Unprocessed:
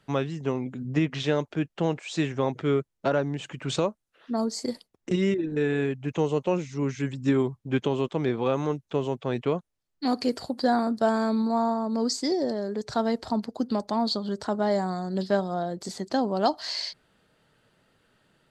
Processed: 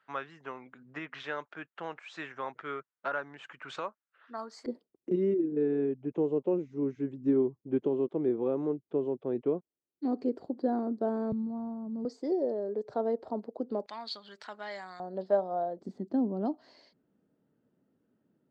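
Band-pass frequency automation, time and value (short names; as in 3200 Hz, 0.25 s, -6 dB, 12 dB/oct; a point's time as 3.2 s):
band-pass, Q 2
1400 Hz
from 4.66 s 350 Hz
from 11.32 s 130 Hz
from 12.05 s 470 Hz
from 13.86 s 2300 Hz
from 15 s 620 Hz
from 15.79 s 260 Hz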